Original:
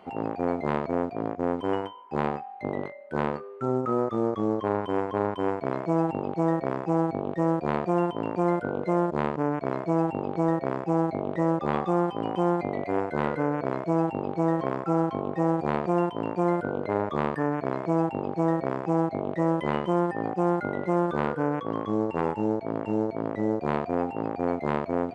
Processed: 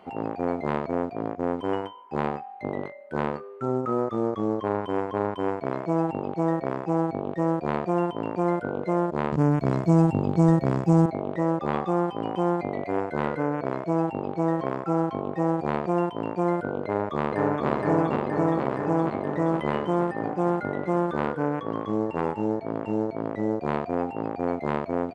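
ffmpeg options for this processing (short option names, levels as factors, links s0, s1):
-filter_complex "[0:a]asettb=1/sr,asplit=3[s0][s1][s2];[s0]atrim=end=9.324[s3];[s1]atrim=start=9.32:end=11.06,asetpts=PTS-STARTPTS,afade=t=in:d=0.004:c=qsin,afade=t=out:st=1.736:d=0.004:c=qsin,bass=f=250:g=14,treble=f=4000:g=13[s4];[s2]atrim=start=11.056[s5];[s3][s4]acrossfade=d=0.004:c1=hsin:c2=qsin[s6];[s6][s5]acrossfade=d=0.004:c1=qsin:c2=hsin,asplit=2[s7][s8];[s8]afade=t=in:st=16.84:d=0.01,afade=t=out:st=17.69:d=0.01,aecho=0:1:470|940|1410|1880|2350|2820|3290|3760|4230|4700|5170|5640:0.944061|0.708046|0.531034|0.398276|0.298707|0.22403|0.168023|0.126017|0.0945127|0.0708845|0.0531634|0.0398725[s9];[s7][s9]amix=inputs=2:normalize=0"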